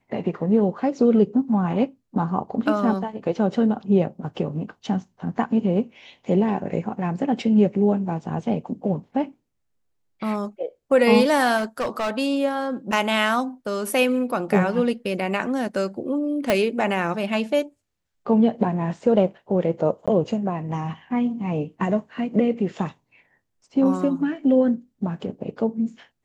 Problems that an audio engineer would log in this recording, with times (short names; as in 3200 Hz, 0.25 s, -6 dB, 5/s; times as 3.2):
11.57–12.11 clipped -21 dBFS
12.92 gap 3.3 ms
16.5 pop -5 dBFS
20.06–20.08 gap 16 ms